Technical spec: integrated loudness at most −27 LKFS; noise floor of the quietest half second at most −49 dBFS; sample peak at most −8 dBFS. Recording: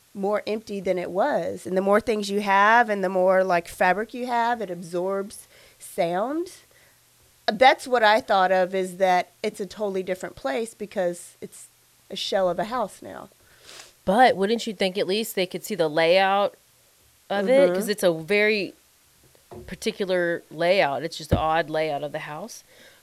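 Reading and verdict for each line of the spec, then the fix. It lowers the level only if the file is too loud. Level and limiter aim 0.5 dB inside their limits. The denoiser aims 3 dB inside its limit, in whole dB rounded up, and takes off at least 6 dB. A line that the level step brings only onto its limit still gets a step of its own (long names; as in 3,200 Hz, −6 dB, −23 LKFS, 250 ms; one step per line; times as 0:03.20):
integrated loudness −23.0 LKFS: out of spec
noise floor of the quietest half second −59 dBFS: in spec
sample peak −4.0 dBFS: out of spec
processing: level −4.5 dB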